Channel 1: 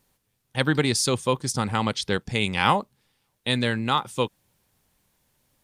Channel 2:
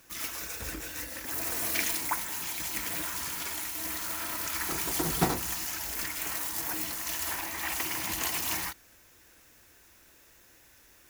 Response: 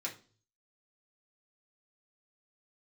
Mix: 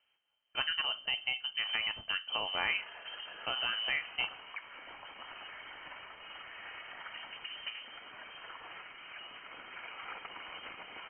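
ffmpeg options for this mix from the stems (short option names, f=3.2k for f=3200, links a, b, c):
-filter_complex "[0:a]acompressor=threshold=-26dB:ratio=2.5,volume=-7dB,asplit=2[a][b];[b]volume=-6.5dB[c];[1:a]acompressor=threshold=-42dB:ratio=6,adelay=2450,volume=2.5dB[d];[2:a]atrim=start_sample=2205[e];[c][e]afir=irnorm=-1:irlink=0[f];[a][d][f]amix=inputs=3:normalize=0,lowpass=f=2.7k:t=q:w=0.5098,lowpass=f=2.7k:t=q:w=0.6013,lowpass=f=2.7k:t=q:w=0.9,lowpass=f=2.7k:t=q:w=2.563,afreqshift=-3200"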